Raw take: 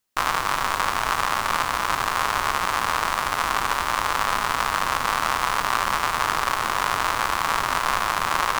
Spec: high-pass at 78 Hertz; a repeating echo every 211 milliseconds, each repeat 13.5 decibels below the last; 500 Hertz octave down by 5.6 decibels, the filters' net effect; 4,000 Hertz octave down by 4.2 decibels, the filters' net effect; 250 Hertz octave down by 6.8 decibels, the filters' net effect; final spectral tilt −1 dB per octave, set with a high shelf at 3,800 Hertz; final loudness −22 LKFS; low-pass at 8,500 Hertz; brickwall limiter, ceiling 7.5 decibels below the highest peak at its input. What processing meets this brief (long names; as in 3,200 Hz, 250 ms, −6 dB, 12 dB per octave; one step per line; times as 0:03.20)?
high-pass filter 78 Hz
low-pass filter 8,500 Hz
parametric band 250 Hz −7.5 dB
parametric band 500 Hz −6 dB
high-shelf EQ 3,800 Hz +4 dB
parametric band 4,000 Hz −8 dB
brickwall limiter −12.5 dBFS
repeating echo 211 ms, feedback 21%, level −13.5 dB
level +4.5 dB